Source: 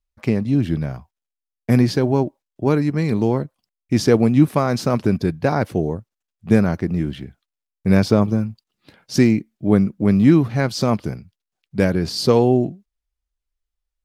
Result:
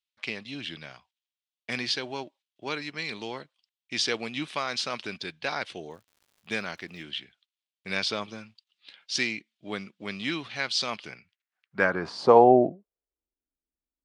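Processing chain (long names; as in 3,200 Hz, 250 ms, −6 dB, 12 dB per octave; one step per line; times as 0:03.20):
downsampling to 22,050 Hz
band-pass filter sweep 3,300 Hz → 270 Hz, 0:10.90–0:13.48
0:05.90–0:07.01: surface crackle 160 per second −58 dBFS
level +8 dB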